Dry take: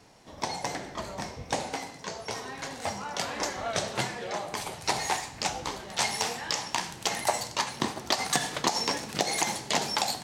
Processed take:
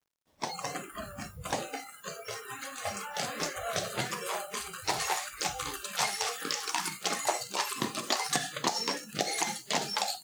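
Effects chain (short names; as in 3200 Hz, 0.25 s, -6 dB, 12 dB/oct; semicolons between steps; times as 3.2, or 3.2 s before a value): echoes that change speed 0.245 s, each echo +4 st, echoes 3, each echo -6 dB; requantised 8-bit, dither none; spectral noise reduction 21 dB; gain -3 dB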